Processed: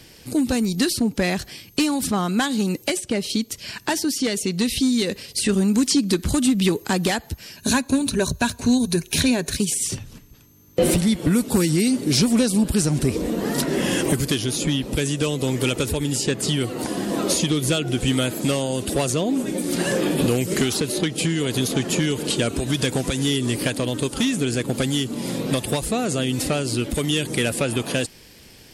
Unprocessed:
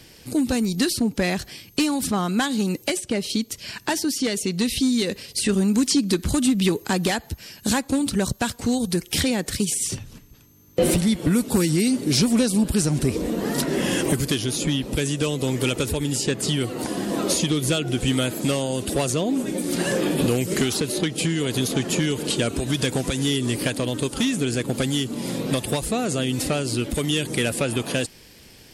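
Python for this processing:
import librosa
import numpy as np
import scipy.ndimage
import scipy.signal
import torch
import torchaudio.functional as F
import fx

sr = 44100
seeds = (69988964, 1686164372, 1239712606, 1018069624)

y = fx.ripple_eq(x, sr, per_octave=1.5, db=9, at=(7.56, 9.57))
y = F.gain(torch.from_numpy(y), 1.0).numpy()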